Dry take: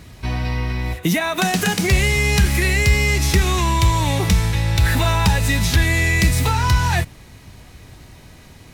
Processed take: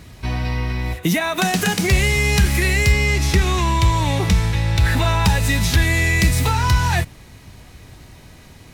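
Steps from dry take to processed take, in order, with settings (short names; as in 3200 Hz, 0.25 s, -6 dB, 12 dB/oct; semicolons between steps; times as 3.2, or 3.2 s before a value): 2.92–5.25 high shelf 8200 Hz -8 dB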